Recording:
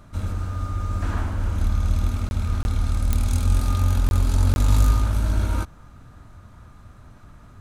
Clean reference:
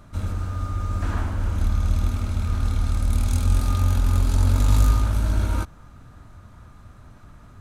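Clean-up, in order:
click removal
repair the gap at 0:02.29/0:02.63/0:04.09/0:04.54, 21 ms

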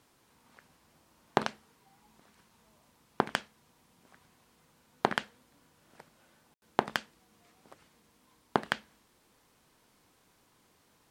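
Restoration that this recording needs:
clipped peaks rebuilt −8.5 dBFS
ambience match 0:06.54–0:06.62

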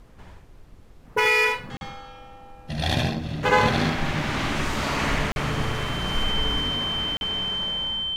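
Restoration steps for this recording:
notch filter 3,100 Hz, Q 30
repair the gap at 0:01.77/0:05.32/0:07.17, 41 ms
noise reduction from a noise print 24 dB
echo removal 76 ms −3.5 dB

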